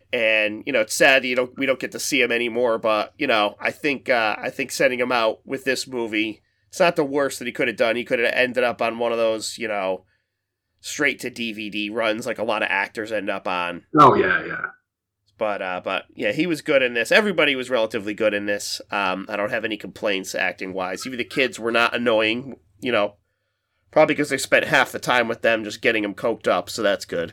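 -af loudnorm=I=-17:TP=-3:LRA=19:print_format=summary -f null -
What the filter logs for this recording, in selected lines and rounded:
Input Integrated:    -21.2 LUFS
Input True Peak:      -2.9 dBTP
Input LRA:             3.7 LU
Input Threshold:     -31.4 LUFS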